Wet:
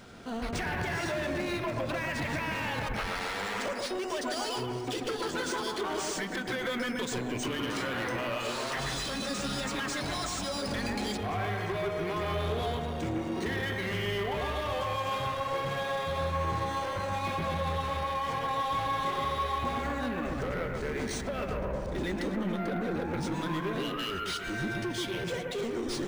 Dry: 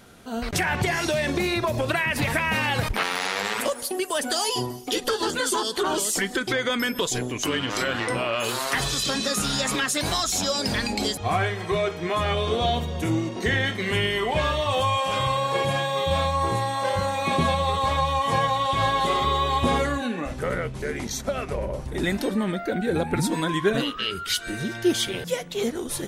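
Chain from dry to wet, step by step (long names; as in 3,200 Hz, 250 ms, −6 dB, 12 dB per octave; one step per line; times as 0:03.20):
downward compressor, threshold −26 dBFS, peak gain reduction 10 dB
soft clipping −30 dBFS, distortion −11 dB
bucket-brigade delay 133 ms, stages 2,048, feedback 51%, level −3 dB
linearly interpolated sample-rate reduction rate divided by 3×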